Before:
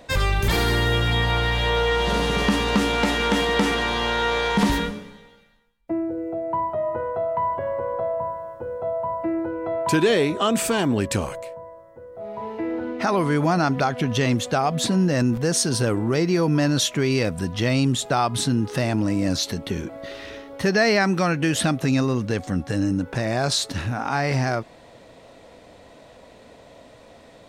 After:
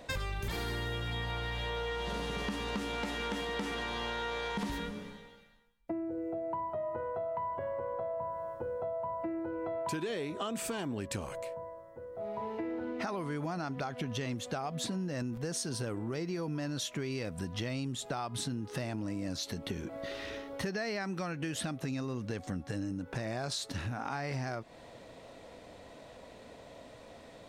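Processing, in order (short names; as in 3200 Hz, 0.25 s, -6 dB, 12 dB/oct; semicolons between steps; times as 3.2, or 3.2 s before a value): compressor, threshold -30 dBFS, peak gain reduction 15 dB; gain -4 dB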